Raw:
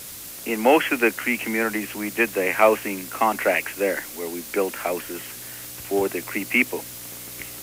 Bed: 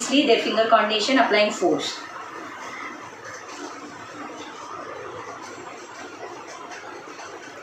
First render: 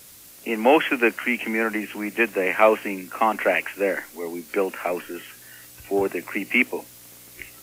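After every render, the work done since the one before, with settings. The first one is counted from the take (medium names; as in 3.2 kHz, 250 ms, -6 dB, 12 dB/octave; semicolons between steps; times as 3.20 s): noise print and reduce 9 dB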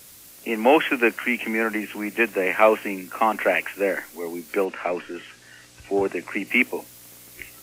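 4.64–6.46 s: low-pass 5.1 kHz -> 9 kHz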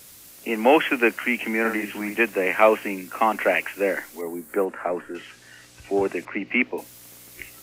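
1.60–2.17 s: doubling 49 ms -6 dB; 4.21–5.15 s: high-order bell 3.8 kHz -13.5 dB; 6.25–6.78 s: distance through air 240 m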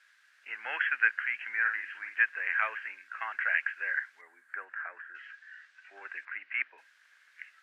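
ladder band-pass 1.7 kHz, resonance 80%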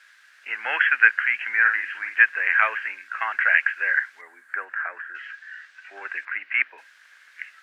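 trim +10 dB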